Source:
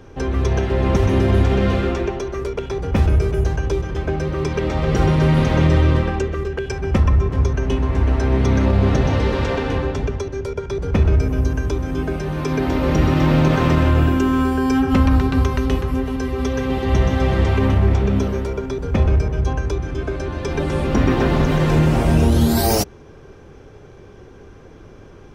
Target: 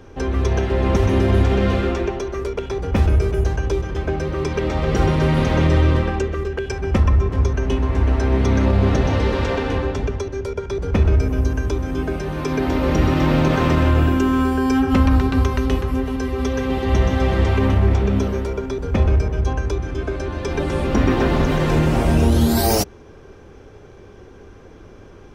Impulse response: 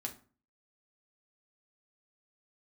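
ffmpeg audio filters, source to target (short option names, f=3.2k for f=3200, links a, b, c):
-af "equalizer=f=140:t=o:w=0.35:g=-6"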